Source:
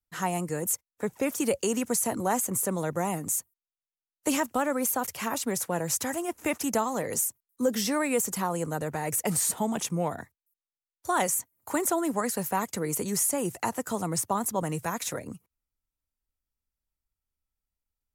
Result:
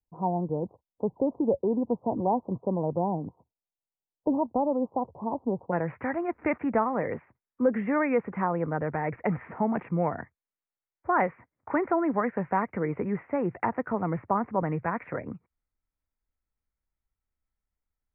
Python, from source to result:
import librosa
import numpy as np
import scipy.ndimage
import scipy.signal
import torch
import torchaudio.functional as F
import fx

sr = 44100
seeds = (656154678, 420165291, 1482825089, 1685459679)

y = fx.steep_lowpass(x, sr, hz=fx.steps((0.0, 990.0), (5.71, 2300.0)), slope=72)
y = F.gain(torch.from_numpy(y), 2.0).numpy()